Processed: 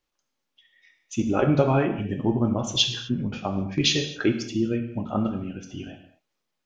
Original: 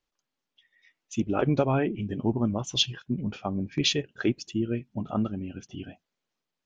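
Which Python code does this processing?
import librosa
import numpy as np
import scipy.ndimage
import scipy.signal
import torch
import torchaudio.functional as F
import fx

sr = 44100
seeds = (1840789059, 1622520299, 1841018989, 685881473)

y = fx.rev_gated(x, sr, seeds[0], gate_ms=280, shape='falling', drr_db=3.5)
y = y * 10.0 ** (2.5 / 20.0)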